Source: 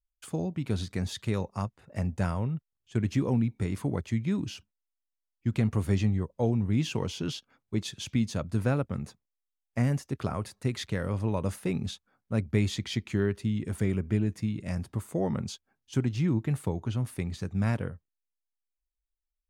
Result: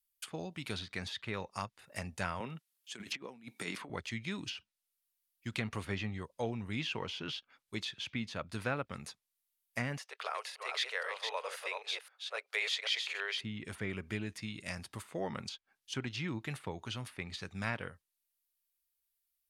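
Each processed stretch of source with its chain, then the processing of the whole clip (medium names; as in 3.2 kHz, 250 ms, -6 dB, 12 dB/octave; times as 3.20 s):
2.40–3.90 s: high-pass 170 Hz 24 dB/octave + compressor with a negative ratio -34 dBFS, ratio -0.5
9.98–13.41 s: chunks repeated in reverse 263 ms, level -4.5 dB + Chebyshev high-pass 450 Hz, order 5 + treble shelf 2.9 kHz +10 dB
whole clip: pre-emphasis filter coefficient 0.97; low-pass that closes with the level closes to 2.3 kHz, closed at -44.5 dBFS; peaking EQ 6.9 kHz -8 dB 1 oct; trim +15 dB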